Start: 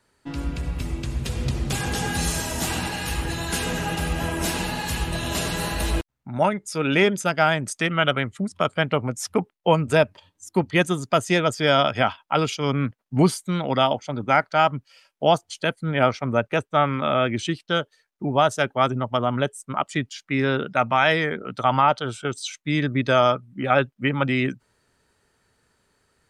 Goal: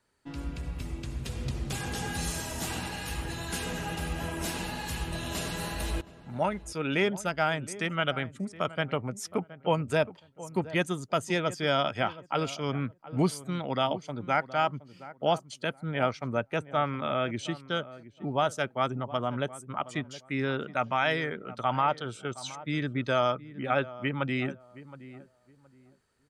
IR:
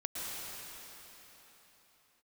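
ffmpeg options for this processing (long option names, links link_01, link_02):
-filter_complex "[0:a]asplit=2[link_01][link_02];[link_02]adelay=719,lowpass=frequency=1200:poles=1,volume=-15.5dB,asplit=2[link_03][link_04];[link_04]adelay=719,lowpass=frequency=1200:poles=1,volume=0.25,asplit=2[link_05][link_06];[link_06]adelay=719,lowpass=frequency=1200:poles=1,volume=0.25[link_07];[link_01][link_03][link_05][link_07]amix=inputs=4:normalize=0,volume=-8dB"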